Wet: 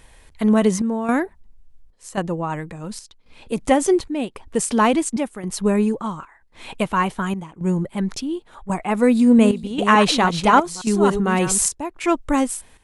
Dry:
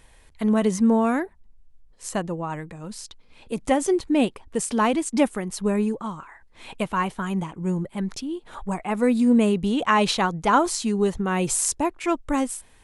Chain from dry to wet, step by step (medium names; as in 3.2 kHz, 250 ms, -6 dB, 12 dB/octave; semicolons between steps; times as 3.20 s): 9.10–11.66 s: chunks repeated in reverse 286 ms, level -8.5 dB; square tremolo 0.92 Hz, depth 65%, duty 75%; trim +4.5 dB